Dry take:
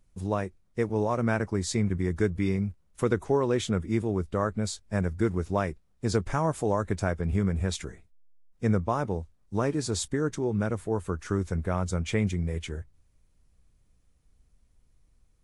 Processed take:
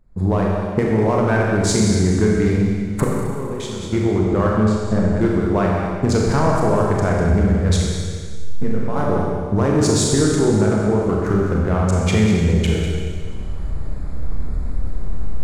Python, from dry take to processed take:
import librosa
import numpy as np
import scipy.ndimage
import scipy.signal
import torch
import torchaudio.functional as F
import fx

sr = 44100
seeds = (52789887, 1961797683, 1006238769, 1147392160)

y = fx.wiener(x, sr, points=15)
y = fx.recorder_agc(y, sr, target_db=-16.5, rise_db_per_s=40.0, max_gain_db=30)
y = y + 10.0 ** (-9.5 / 20.0) * np.pad(y, (int(198 * sr / 1000.0), 0))[:len(y)]
y = fx.level_steps(y, sr, step_db=19, at=(3.04, 3.93))
y = fx.lowpass(y, sr, hz=1100.0, slope=6, at=(4.63, 5.16))
y = fx.comb_fb(y, sr, f0_hz=51.0, decay_s=0.27, harmonics='odd', damping=0.0, mix_pct=80, at=(7.8, 8.95), fade=0.02)
y = fx.rev_schroeder(y, sr, rt60_s=1.8, comb_ms=29, drr_db=-2.0)
y = 10.0 ** (-11.5 / 20.0) * np.tanh(y / 10.0 ** (-11.5 / 20.0))
y = y * librosa.db_to_amplitude(6.5)